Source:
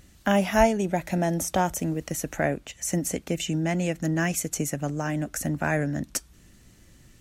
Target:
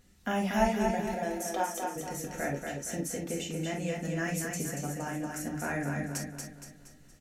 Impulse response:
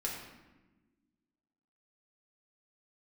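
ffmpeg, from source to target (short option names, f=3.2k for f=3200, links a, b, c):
-filter_complex "[0:a]asettb=1/sr,asplit=3[a][b][c];[a]atrim=end=1.124[d];[b]atrim=start=1.12:end=1.96,asetpts=PTS-STARTPTS,afade=t=in:d=0.004:c=qsin,afade=t=out:st=0.836:d=0.004:c=qsin,highpass=f=320:w=0.5412,highpass=f=320:w=1.3066[e];[c]atrim=start=1.956[f];[d][e]acrossfade=d=0.004:c1=hsin:c2=qsin[g];[g][f]acrossfade=d=0.004:c1=qsin:c2=hsin,aecho=1:1:234|468|702|936|1170|1404:0.596|0.268|0.121|0.0543|0.0244|0.011[h];[1:a]atrim=start_sample=2205,atrim=end_sample=3087[i];[h][i]afir=irnorm=-1:irlink=0,volume=-8.5dB"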